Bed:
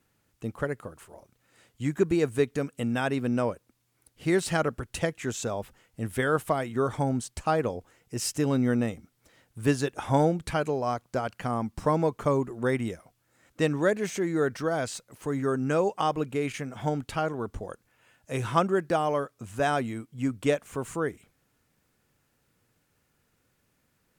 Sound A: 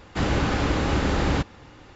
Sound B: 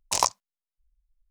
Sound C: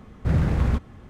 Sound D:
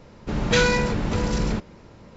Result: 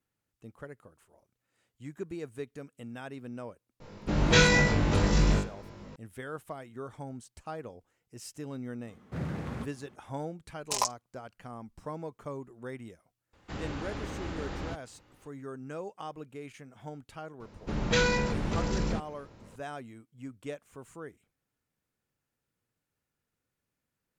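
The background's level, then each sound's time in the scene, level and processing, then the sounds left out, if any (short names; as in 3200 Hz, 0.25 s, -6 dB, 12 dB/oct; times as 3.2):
bed -14.5 dB
3.8 add D -3 dB + flutter echo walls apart 3.4 m, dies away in 0.34 s
8.87 add C -9 dB + HPF 150 Hz
10.59 add B -8 dB + comb 4.9 ms, depth 77%
13.33 add A -15 dB
17.4 add D -6.5 dB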